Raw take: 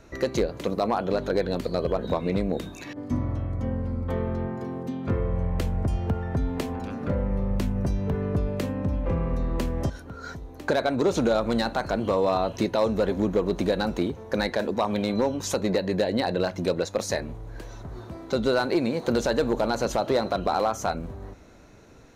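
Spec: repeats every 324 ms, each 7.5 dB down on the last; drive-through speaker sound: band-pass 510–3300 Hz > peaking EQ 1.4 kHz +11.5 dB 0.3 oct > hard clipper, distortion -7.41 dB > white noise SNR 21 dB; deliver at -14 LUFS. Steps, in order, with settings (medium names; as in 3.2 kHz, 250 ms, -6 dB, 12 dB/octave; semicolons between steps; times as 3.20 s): band-pass 510–3300 Hz; peaking EQ 1.4 kHz +11.5 dB 0.3 oct; feedback delay 324 ms, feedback 42%, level -7.5 dB; hard clipper -25.5 dBFS; white noise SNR 21 dB; trim +18 dB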